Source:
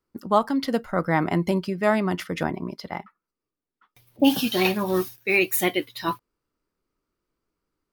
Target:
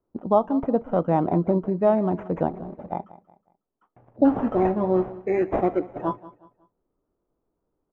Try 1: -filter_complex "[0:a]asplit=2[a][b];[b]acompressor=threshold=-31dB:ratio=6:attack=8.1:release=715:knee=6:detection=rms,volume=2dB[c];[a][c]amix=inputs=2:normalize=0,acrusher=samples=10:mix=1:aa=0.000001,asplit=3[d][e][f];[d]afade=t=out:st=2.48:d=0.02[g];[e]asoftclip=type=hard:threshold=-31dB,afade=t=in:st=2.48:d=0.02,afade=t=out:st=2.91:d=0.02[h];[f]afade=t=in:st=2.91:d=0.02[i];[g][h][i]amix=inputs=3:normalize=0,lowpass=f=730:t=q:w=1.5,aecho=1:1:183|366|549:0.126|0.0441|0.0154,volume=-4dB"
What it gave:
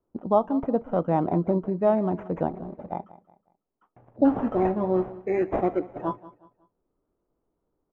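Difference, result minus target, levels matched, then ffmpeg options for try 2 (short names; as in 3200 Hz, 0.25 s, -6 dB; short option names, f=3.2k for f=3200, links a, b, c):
compressor: peak gain reduction +7.5 dB
-filter_complex "[0:a]asplit=2[a][b];[b]acompressor=threshold=-22dB:ratio=6:attack=8.1:release=715:knee=6:detection=rms,volume=2dB[c];[a][c]amix=inputs=2:normalize=0,acrusher=samples=10:mix=1:aa=0.000001,asplit=3[d][e][f];[d]afade=t=out:st=2.48:d=0.02[g];[e]asoftclip=type=hard:threshold=-31dB,afade=t=in:st=2.48:d=0.02,afade=t=out:st=2.91:d=0.02[h];[f]afade=t=in:st=2.91:d=0.02[i];[g][h][i]amix=inputs=3:normalize=0,lowpass=f=730:t=q:w=1.5,aecho=1:1:183|366|549:0.126|0.0441|0.0154,volume=-4dB"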